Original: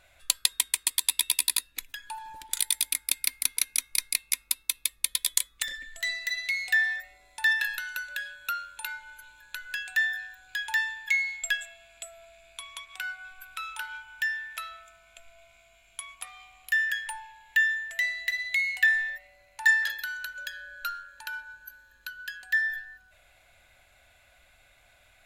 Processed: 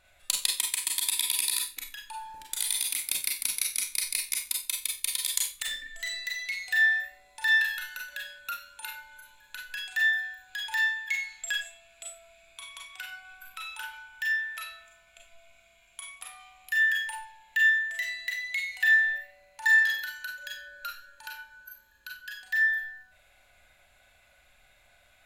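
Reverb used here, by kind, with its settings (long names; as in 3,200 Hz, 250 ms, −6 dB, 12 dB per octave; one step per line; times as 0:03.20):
four-comb reverb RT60 0.3 s, combs from 30 ms, DRR −0.5 dB
level −4.5 dB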